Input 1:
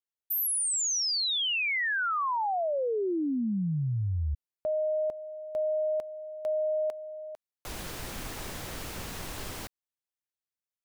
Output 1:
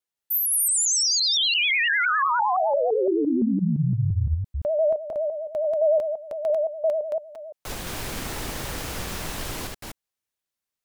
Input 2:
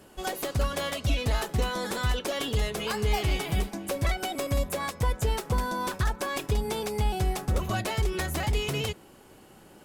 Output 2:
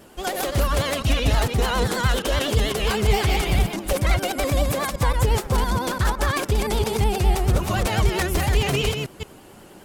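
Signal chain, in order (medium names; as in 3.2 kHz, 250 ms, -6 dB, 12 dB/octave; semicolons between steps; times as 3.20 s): chunks repeated in reverse 171 ms, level -2.5 dB; vibrato 9.8 Hz 91 cents; trim +5 dB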